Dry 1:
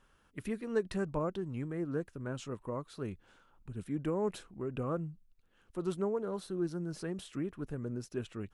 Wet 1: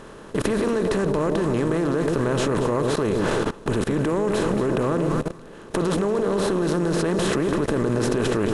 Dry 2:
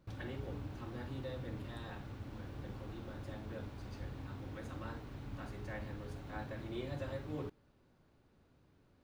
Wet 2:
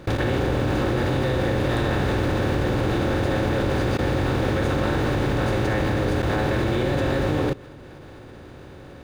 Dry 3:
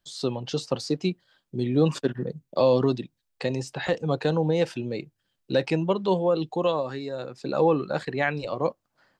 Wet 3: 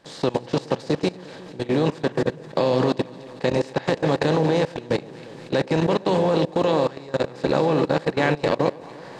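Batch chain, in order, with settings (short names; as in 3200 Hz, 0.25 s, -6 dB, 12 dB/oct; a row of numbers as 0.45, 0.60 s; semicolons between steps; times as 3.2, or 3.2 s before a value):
per-bin compression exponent 0.4; echo with dull and thin repeats by turns 0.117 s, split 850 Hz, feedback 71%, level -7 dB; level quantiser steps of 20 dB; match loudness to -23 LUFS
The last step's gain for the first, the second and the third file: +18.5, +18.0, +1.0 dB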